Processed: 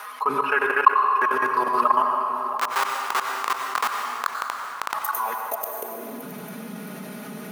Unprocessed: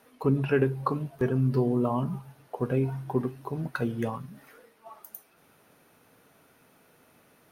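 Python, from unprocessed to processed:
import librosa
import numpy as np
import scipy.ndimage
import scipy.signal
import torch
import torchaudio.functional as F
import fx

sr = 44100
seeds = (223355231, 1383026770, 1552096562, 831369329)

y = fx.reverse_delay_fb(x, sr, ms=334, feedback_pct=51, wet_db=-3.5)
y = y + 0.63 * np.pad(y, (int(4.8 * sr / 1000.0), 0))[:len(y)]
y = fx.level_steps(y, sr, step_db=23)
y = fx.schmitt(y, sr, flips_db=-38.0, at=(2.57, 4.94))
y = fx.filter_sweep_highpass(y, sr, from_hz=1100.0, to_hz=190.0, start_s=5.16, end_s=6.35, q=4.2)
y = fx.rev_plate(y, sr, seeds[0], rt60_s=1.8, hf_ratio=0.75, predelay_ms=80, drr_db=7.0)
y = fx.env_flatten(y, sr, amount_pct=50)
y = y * 10.0 ** (2.0 / 20.0)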